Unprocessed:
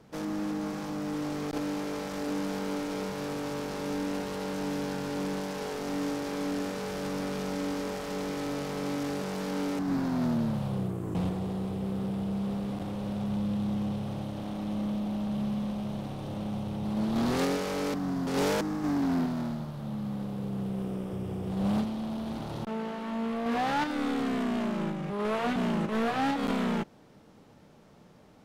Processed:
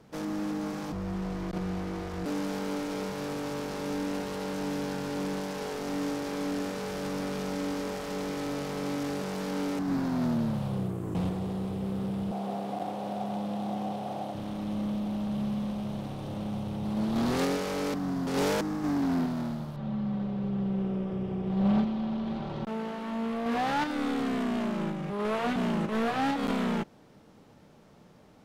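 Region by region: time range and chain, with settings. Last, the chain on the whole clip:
0.92–2.26 high shelf 3300 Hz -9.5 dB + frequency shift -110 Hz
12.31–14.35 HPF 230 Hz + bell 730 Hz +13 dB 0.47 oct
19.76–22.65 LPF 3500 Hz + comb 5.2 ms, depth 57%
whole clip: dry

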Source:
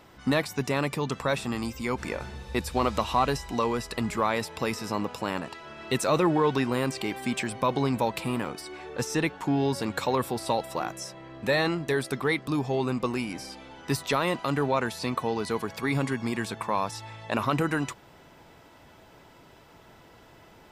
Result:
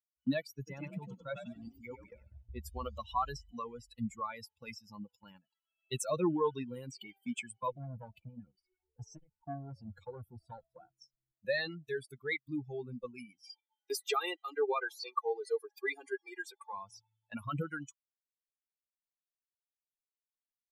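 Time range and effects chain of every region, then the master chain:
0.51–2.6 high shelf 2200 Hz -4.5 dB + frequency-shifting echo 96 ms, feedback 54%, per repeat +43 Hz, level -3 dB
7.72–11.32 tilt -2 dB/oct + core saturation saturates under 1000 Hz
13.43–16.73 steep high-pass 300 Hz + comb 2.5 ms, depth 95%
whole clip: per-bin expansion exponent 3; dynamic EQ 800 Hz, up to -6 dB, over -51 dBFS, Q 4.2; gate -55 dBFS, range -8 dB; gain -2.5 dB

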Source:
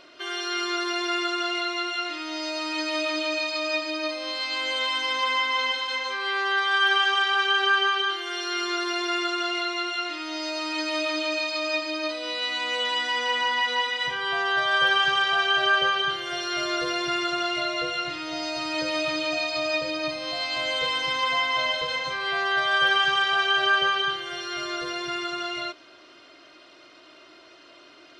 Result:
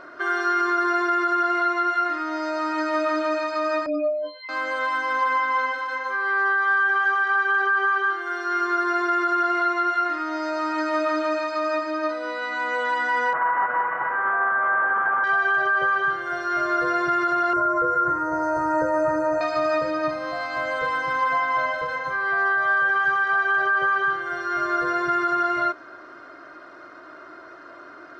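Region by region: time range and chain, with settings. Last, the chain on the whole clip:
3.86–4.49 spectral contrast raised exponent 4 + frequency shift -16 Hz + doubler 23 ms -8 dB
13.33–15.24 delta modulation 16 kbps, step -22.5 dBFS + band-pass 990 Hz, Q 1.1 + air absorption 200 m
17.53–19.41 Butterworth band-stop 3300 Hz, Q 0.52 + comb 2.1 ms, depth 85%
whole clip: vocal rider 2 s; resonant high shelf 2100 Hz -11.5 dB, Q 3; limiter -16 dBFS; gain +2 dB

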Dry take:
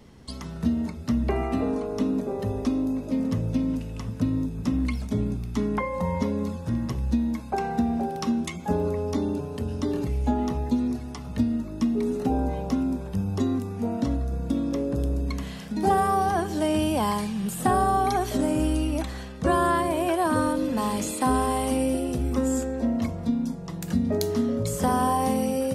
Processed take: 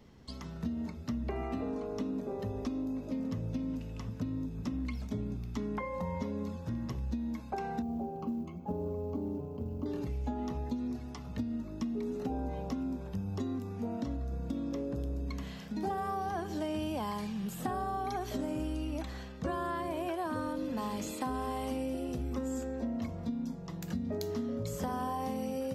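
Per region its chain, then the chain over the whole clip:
7.82–9.86 running mean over 24 samples + de-hum 62.05 Hz, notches 2 + companded quantiser 8-bit
whole clip: bell 9400 Hz -14.5 dB 0.3 oct; compressor 4:1, threshold -25 dBFS; gain -7 dB

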